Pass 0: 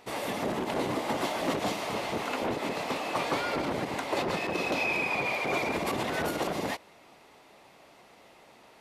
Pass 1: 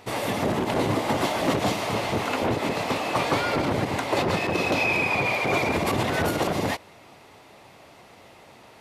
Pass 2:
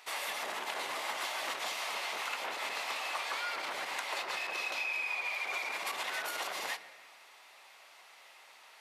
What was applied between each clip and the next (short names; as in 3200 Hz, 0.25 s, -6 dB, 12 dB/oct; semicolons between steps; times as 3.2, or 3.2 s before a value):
bell 99 Hz +10 dB 0.99 oct; gain +5.5 dB
HPF 1200 Hz 12 dB/oct; compressor, threshold -31 dBFS, peak gain reduction 9 dB; on a send at -11 dB: reverb RT60 1.4 s, pre-delay 5 ms; on the sum: gain -2.5 dB